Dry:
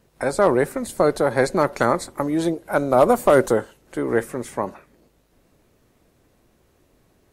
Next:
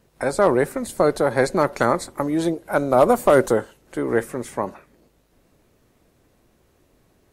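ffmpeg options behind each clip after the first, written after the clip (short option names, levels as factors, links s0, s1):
-af anull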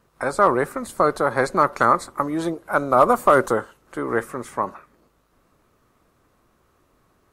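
-af "equalizer=f=1200:t=o:w=0.67:g=12,volume=0.668"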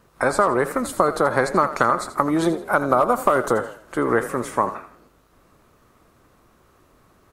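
-filter_complex "[0:a]acompressor=threshold=0.112:ratio=10,asplit=5[s0][s1][s2][s3][s4];[s1]adelay=83,afreqshift=34,volume=0.224[s5];[s2]adelay=166,afreqshift=68,volume=0.0832[s6];[s3]adelay=249,afreqshift=102,volume=0.0305[s7];[s4]adelay=332,afreqshift=136,volume=0.0114[s8];[s0][s5][s6][s7][s8]amix=inputs=5:normalize=0,volume=1.88"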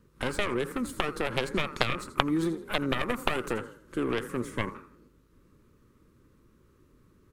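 -filter_complex "[0:a]acrossover=split=550[s0][s1];[s0]alimiter=limit=0.126:level=0:latency=1:release=380[s2];[s1]aeval=exprs='0.668*(cos(1*acos(clip(val(0)/0.668,-1,1)))-cos(1*PI/2))+0.299*(cos(3*acos(clip(val(0)/0.668,-1,1)))-cos(3*PI/2))+0.106*(cos(4*acos(clip(val(0)/0.668,-1,1)))-cos(4*PI/2))+0.00376*(cos(8*acos(clip(val(0)/0.668,-1,1)))-cos(8*PI/2))':c=same[s3];[s2][s3]amix=inputs=2:normalize=0,volume=0.841"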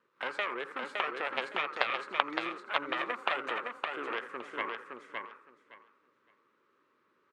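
-filter_complex "[0:a]highpass=730,lowpass=2700,asplit=2[s0][s1];[s1]aecho=0:1:564|1128|1692:0.631|0.114|0.0204[s2];[s0][s2]amix=inputs=2:normalize=0"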